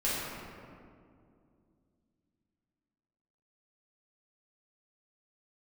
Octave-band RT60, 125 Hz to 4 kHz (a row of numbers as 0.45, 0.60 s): 3.3, 3.4, 2.7, 2.1, 1.6, 1.2 s